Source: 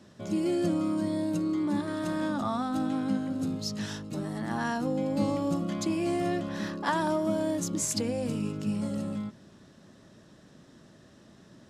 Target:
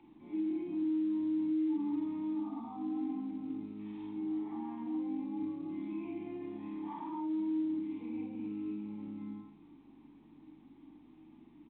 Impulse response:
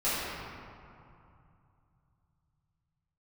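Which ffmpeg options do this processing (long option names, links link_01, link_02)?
-filter_complex "[0:a]equalizer=frequency=65:width=3.8:gain=7,aeval=exprs='val(0)+0.00224*(sin(2*PI*50*n/s)+sin(2*PI*2*50*n/s)/2+sin(2*PI*3*50*n/s)/3+sin(2*PI*4*50*n/s)/4+sin(2*PI*5*50*n/s)/5)':channel_layout=same,acrossover=split=220|1500[link_01][link_02][link_03];[link_03]aeval=exprs='(mod(11.9*val(0)+1,2)-1)/11.9':channel_layout=same[link_04];[link_01][link_02][link_04]amix=inputs=3:normalize=0[link_05];[1:a]atrim=start_sample=2205,afade=type=out:start_time=0.24:duration=0.01,atrim=end_sample=11025,asetrate=40131,aresample=44100[link_06];[link_05][link_06]afir=irnorm=-1:irlink=0,acompressor=mode=upward:threshold=-33dB:ratio=2.5,asplit=2[link_07][link_08];[link_08]adelay=48,volume=-4.5dB[link_09];[link_07][link_09]amix=inputs=2:normalize=0,aecho=1:1:213:0.075,alimiter=limit=-12dB:level=0:latency=1:release=11,acrossover=split=130[link_10][link_11];[link_11]acompressor=threshold=-26dB:ratio=2.5[link_12];[link_10][link_12]amix=inputs=2:normalize=0,asplit=3[link_13][link_14][link_15];[link_13]bandpass=frequency=300:width_type=q:width=8,volume=0dB[link_16];[link_14]bandpass=frequency=870:width_type=q:width=8,volume=-6dB[link_17];[link_15]bandpass=frequency=2240:width_type=q:width=8,volume=-9dB[link_18];[link_16][link_17][link_18]amix=inputs=3:normalize=0,volume=-6dB" -ar 8000 -c:a pcm_mulaw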